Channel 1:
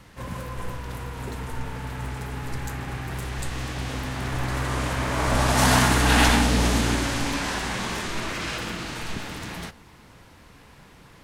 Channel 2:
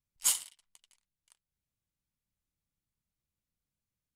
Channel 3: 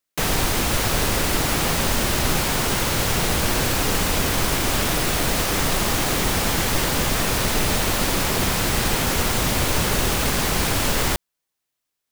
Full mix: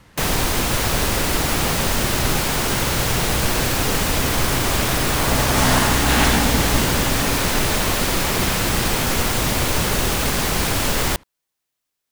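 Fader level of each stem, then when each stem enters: 0.0 dB, off, +1.0 dB; 0.00 s, off, 0.00 s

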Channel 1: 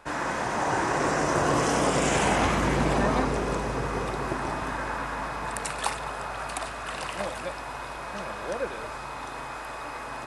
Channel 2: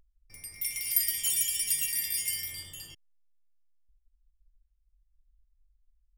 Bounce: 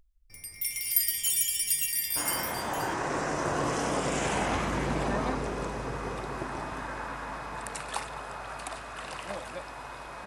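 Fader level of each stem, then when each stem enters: -5.5, +1.0 dB; 2.10, 0.00 s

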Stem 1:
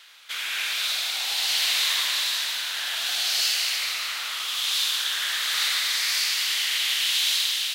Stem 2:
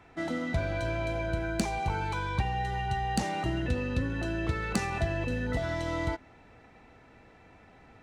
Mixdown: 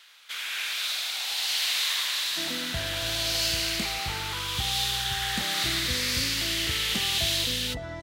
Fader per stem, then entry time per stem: -3.5, -5.0 dB; 0.00, 2.20 s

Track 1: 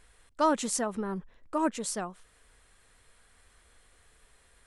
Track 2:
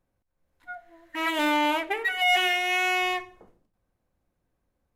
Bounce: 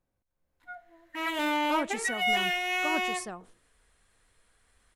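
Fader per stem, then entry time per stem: -5.5, -4.5 dB; 1.30, 0.00 s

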